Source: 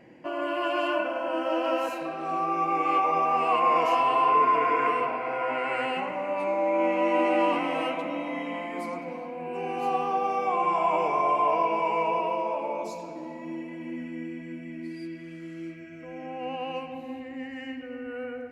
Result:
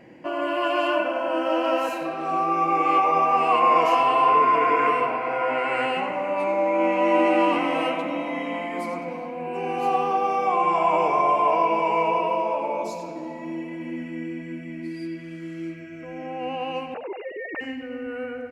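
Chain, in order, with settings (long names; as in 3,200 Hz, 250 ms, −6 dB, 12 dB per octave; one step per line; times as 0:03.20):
0:16.94–0:17.61: three sine waves on the formant tracks
repeating echo 91 ms, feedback 16%, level −13.5 dB
level +4 dB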